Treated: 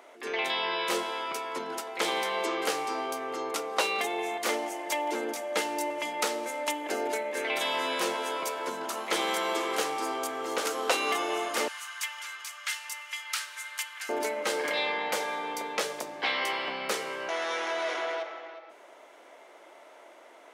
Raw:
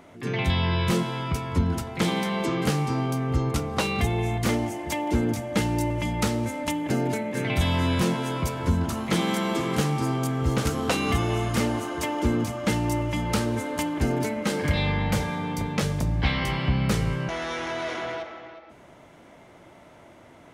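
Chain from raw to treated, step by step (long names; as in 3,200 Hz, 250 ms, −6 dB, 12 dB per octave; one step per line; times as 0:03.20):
high-pass filter 410 Hz 24 dB per octave, from 0:11.68 1,400 Hz, from 0:14.09 400 Hz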